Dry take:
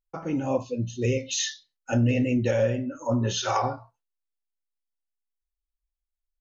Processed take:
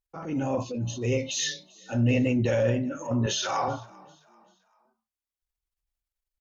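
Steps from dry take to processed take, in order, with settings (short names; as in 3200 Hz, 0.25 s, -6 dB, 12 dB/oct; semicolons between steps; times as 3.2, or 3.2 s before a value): 3.26–3.68 HPF 530 Hz 6 dB/oct; transient shaper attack -8 dB, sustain +5 dB; frequency-shifting echo 0.39 s, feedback 40%, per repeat +36 Hz, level -24 dB; added harmonics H 2 -27 dB, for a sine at -13 dBFS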